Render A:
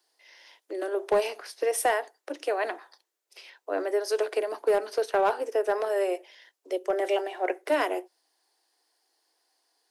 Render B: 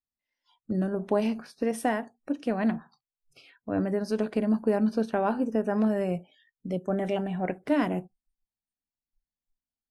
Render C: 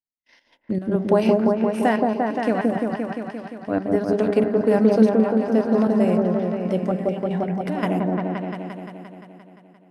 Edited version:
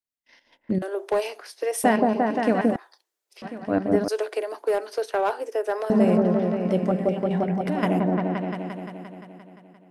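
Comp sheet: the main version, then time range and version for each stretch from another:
C
0.82–1.84 s: from A
2.76–3.42 s: from A
4.08–5.90 s: from A
not used: B

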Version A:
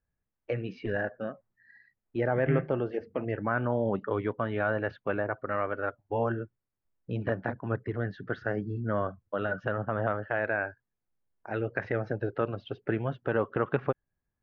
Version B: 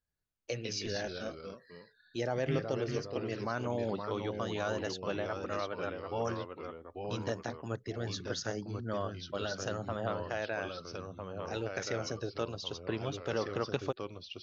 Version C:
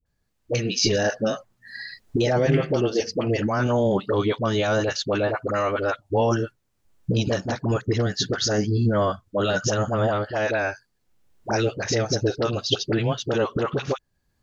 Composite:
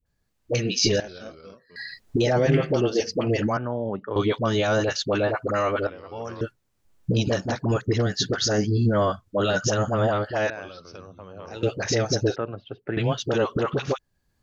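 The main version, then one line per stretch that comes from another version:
C
1.00–1.76 s: from B
3.57–4.16 s: from A
5.87–6.41 s: from B
10.50–11.63 s: from B
12.36–12.97 s: from A

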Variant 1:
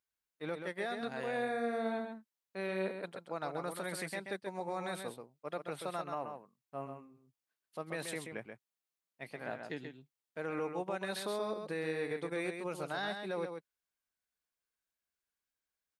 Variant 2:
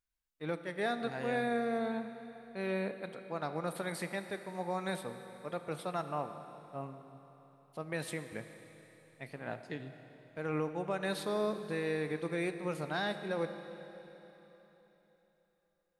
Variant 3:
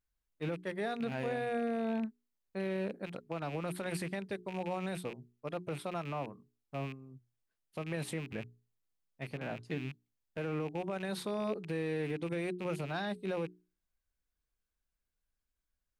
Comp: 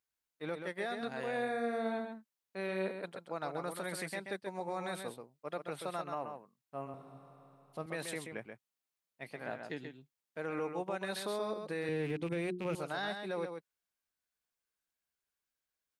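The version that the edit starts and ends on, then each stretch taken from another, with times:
1
6.94–7.86 s: from 2
11.89–12.75 s: from 3

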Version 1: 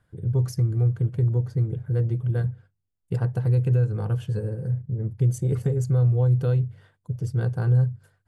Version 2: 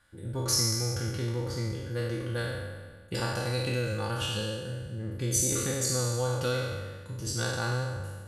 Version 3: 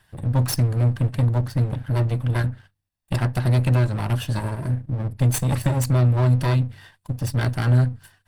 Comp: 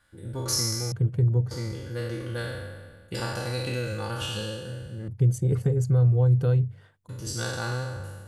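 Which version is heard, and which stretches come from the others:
2
0.92–1.51 s: from 1
5.08–7.09 s: from 1
not used: 3

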